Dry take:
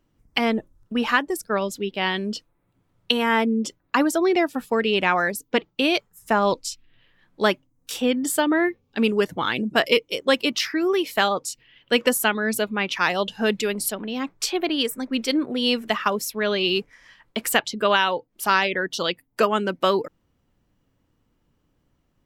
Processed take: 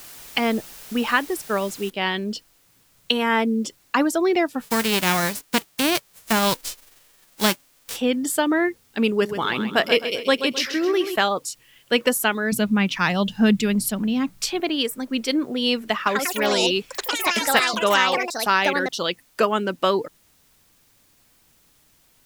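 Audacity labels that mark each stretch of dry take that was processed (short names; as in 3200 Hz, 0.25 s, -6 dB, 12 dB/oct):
1.900000	1.900000	noise floor step -42 dB -60 dB
4.610000	7.950000	spectral whitening exponent 0.3
9.090000	11.160000	feedback echo 0.131 s, feedback 43%, level -9.5 dB
12.520000	14.600000	resonant low shelf 280 Hz +9 dB, Q 1.5
15.940000	19.710000	echoes that change speed 0.123 s, each echo +5 st, echoes 3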